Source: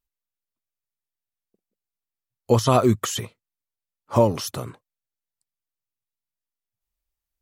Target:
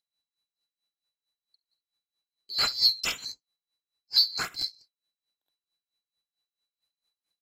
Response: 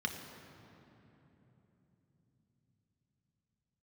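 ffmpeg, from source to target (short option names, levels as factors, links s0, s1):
-filter_complex "[0:a]afftfilt=real='real(if(lt(b,736),b+184*(1-2*mod(floor(b/184),2)),b),0)':imag='imag(if(lt(b,736),b+184*(1-2*mod(floor(b/184),2)),b),0)':win_size=2048:overlap=0.75,asplit=2[s0][s1];[s1]aecho=0:1:48|69:0.282|0.473[s2];[s0][s2]amix=inputs=2:normalize=0,asoftclip=type=tanh:threshold=0.251,lowpass=12000,highshelf=f=4300:g=-3.5,asplit=2[s3][s4];[s4]acompressor=threshold=0.02:ratio=5,volume=0.944[s5];[s3][s5]amix=inputs=2:normalize=0,adynamicequalizer=threshold=0.00355:dfrequency=1100:dqfactor=5.7:tfrequency=1100:tqfactor=5.7:attack=5:release=100:ratio=0.375:range=2:mode=boostabove:tftype=bell,aeval=exprs='val(0)*pow(10,-20*(0.5-0.5*cos(2*PI*4.5*n/s))/20)':c=same"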